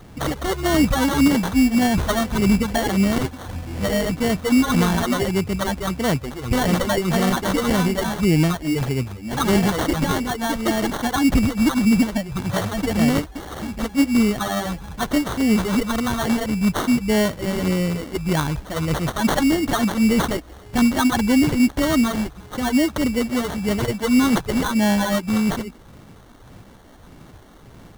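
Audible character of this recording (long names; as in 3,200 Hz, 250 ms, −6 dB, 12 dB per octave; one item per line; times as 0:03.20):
phaser sweep stages 8, 1.7 Hz, lowest notch 120–2,900 Hz
aliases and images of a low sample rate 2,500 Hz, jitter 0%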